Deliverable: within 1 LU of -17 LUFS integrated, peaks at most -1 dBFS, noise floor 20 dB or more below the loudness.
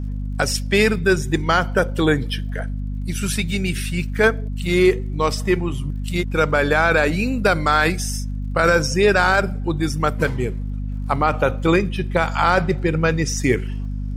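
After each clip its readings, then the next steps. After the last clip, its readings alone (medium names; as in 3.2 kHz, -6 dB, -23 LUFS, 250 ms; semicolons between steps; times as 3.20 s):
tick rate 34 per s; hum 50 Hz; highest harmonic 250 Hz; hum level -23 dBFS; loudness -20.0 LUFS; peak level -4.0 dBFS; loudness target -17.0 LUFS
-> de-click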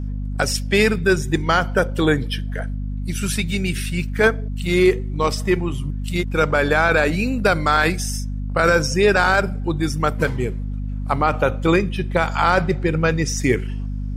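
tick rate 0 per s; hum 50 Hz; highest harmonic 250 Hz; hum level -23 dBFS
-> de-hum 50 Hz, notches 5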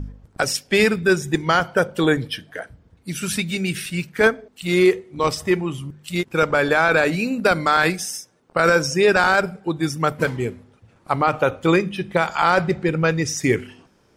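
hum not found; loudness -20.0 LUFS; peak level -4.5 dBFS; loudness target -17.0 LUFS
-> trim +3 dB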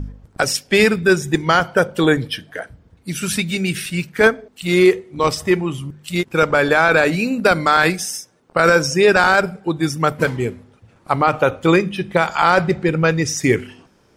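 loudness -17.0 LUFS; peak level -1.5 dBFS; noise floor -55 dBFS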